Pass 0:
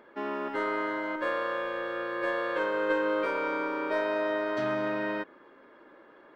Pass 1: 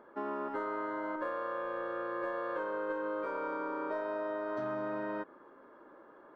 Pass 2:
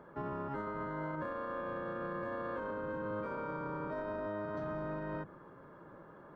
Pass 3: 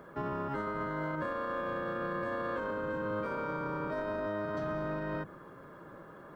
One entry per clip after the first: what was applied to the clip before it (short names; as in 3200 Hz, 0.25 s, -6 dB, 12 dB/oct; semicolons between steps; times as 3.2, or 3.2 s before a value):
resonant high shelf 1700 Hz -8.5 dB, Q 1.5; compressor, threshold -31 dBFS, peak gain reduction 8.5 dB; gain -2 dB
octaver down 1 oct, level +2 dB; limiter -32.5 dBFS, peak gain reduction 8 dB; gain +1 dB
high shelf 2900 Hz +9.5 dB; notch 890 Hz, Q 12; gain +3.5 dB